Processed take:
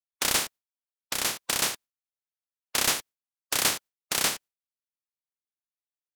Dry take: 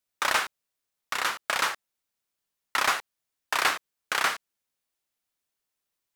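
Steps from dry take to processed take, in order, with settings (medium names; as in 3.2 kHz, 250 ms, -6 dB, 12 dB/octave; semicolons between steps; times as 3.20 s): spectral peaks clipped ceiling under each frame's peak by 24 dB; gate with hold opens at -39 dBFS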